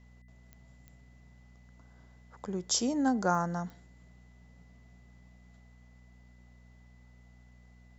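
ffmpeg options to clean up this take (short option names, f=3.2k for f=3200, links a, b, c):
-af "adeclick=t=4,bandreject=f=60.9:t=h:w=4,bandreject=f=121.8:t=h:w=4,bandreject=f=182.7:t=h:w=4,bandreject=f=243.6:t=h:w=4,bandreject=f=2k:w=30"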